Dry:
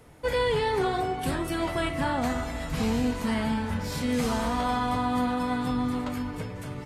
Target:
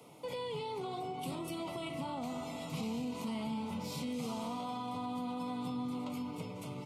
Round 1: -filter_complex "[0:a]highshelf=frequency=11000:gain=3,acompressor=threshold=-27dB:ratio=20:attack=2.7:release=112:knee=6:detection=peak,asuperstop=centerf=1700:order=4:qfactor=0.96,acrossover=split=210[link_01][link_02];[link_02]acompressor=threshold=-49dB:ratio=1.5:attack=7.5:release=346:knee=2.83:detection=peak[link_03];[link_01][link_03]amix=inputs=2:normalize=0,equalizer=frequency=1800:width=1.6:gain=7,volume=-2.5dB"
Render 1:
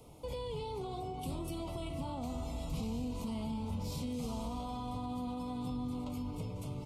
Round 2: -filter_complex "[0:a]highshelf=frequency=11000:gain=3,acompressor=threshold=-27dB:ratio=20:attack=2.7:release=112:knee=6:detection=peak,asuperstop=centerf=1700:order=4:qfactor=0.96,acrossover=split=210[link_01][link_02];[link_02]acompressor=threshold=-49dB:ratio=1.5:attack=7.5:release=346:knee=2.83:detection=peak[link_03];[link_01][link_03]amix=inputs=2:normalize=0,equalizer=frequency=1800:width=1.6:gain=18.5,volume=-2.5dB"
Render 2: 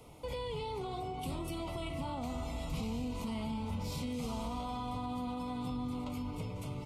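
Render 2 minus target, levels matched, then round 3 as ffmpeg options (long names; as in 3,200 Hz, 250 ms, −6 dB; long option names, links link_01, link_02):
125 Hz band +5.0 dB
-filter_complex "[0:a]highpass=frequency=140:width=0.5412,highpass=frequency=140:width=1.3066,highshelf=frequency=11000:gain=3,acompressor=threshold=-27dB:ratio=20:attack=2.7:release=112:knee=6:detection=peak,asuperstop=centerf=1700:order=4:qfactor=0.96,acrossover=split=210[link_01][link_02];[link_02]acompressor=threshold=-49dB:ratio=1.5:attack=7.5:release=346:knee=2.83:detection=peak[link_03];[link_01][link_03]amix=inputs=2:normalize=0,equalizer=frequency=1800:width=1.6:gain=18.5,volume=-2.5dB"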